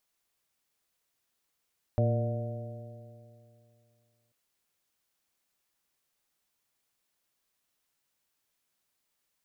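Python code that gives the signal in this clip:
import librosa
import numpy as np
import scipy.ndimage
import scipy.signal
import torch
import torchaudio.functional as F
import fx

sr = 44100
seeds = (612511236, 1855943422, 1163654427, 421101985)

y = fx.additive_stiff(sr, length_s=2.34, hz=114.0, level_db=-23.0, upper_db=(-9, -15.0, -12.0, -5.0, -16.0), decay_s=2.58, stiffness=0.0035)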